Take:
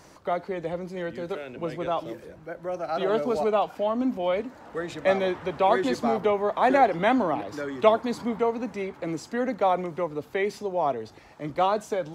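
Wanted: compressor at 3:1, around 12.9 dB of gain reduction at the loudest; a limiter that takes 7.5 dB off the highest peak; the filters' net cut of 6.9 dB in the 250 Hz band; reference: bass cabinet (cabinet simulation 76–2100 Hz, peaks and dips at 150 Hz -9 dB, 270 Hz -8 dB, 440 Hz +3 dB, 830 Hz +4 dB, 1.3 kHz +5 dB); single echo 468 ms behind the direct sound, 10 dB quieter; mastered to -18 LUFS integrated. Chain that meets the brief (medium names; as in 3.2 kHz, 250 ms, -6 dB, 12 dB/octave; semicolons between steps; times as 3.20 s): peaking EQ 250 Hz -4 dB; compression 3:1, threshold -32 dBFS; peak limiter -27 dBFS; cabinet simulation 76–2100 Hz, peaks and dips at 150 Hz -9 dB, 270 Hz -8 dB, 440 Hz +3 dB, 830 Hz +4 dB, 1.3 kHz +5 dB; delay 468 ms -10 dB; trim +17.5 dB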